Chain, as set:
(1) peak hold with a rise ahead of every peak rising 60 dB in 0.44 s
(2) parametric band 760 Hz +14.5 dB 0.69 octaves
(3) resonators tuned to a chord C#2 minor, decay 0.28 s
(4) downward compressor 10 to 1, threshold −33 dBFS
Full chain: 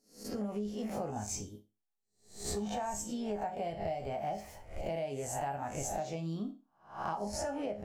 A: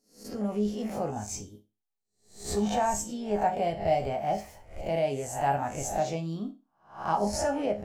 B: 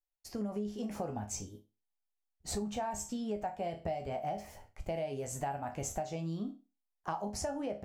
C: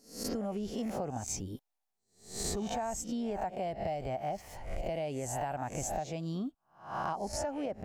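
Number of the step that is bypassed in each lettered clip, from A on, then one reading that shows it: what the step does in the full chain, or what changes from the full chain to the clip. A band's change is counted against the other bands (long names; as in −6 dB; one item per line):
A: 4, average gain reduction 5.5 dB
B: 1, change in crest factor +2.0 dB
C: 3, change in integrated loudness +1.0 LU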